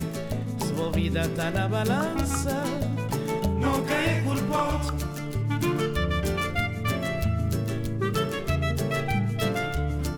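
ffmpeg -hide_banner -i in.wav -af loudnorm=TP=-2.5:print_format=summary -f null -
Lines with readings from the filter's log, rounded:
Input Integrated:    -27.0 LUFS
Input True Peak:     -14.7 dBTP
Input LRA:             1.0 LU
Input Threshold:     -37.0 LUFS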